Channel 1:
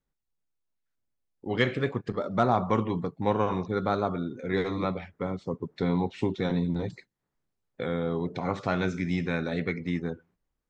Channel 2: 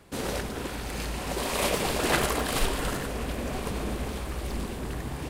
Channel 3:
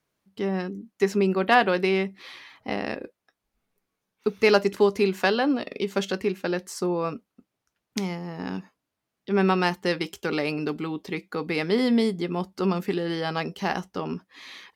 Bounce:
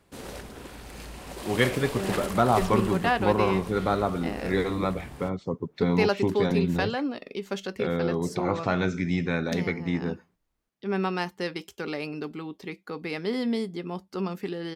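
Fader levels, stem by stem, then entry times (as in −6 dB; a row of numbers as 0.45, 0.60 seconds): +2.0, −8.5, −6.0 decibels; 0.00, 0.00, 1.55 seconds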